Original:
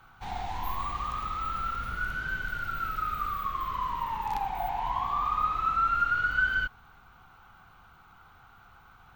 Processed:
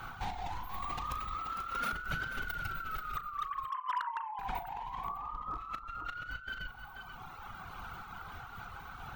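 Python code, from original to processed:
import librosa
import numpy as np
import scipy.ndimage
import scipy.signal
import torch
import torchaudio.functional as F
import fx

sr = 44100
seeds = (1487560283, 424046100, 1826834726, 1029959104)

y = fx.sine_speech(x, sr, at=(3.17, 4.39))
y = fx.lowpass(y, sr, hz=1200.0, slope=24, at=(5.04, 5.58))
y = fx.dereverb_blind(y, sr, rt60_s=1.3)
y = fx.highpass(y, sr, hz=220.0, slope=24, at=(1.39, 1.93))
y = fx.over_compress(y, sr, threshold_db=-43.0, ratio=-1.0)
y = fx.doubler(y, sr, ms=37.0, db=-12.0)
y = y + 10.0 ** (-9.0 / 20.0) * np.pad(y, (int(484 * sr / 1000.0), 0))[:len(y)]
y = np.clip(y, -10.0 ** (-31.5 / 20.0), 10.0 ** (-31.5 / 20.0))
y = fx.am_noise(y, sr, seeds[0], hz=5.7, depth_pct=50)
y = y * librosa.db_to_amplitude(5.0)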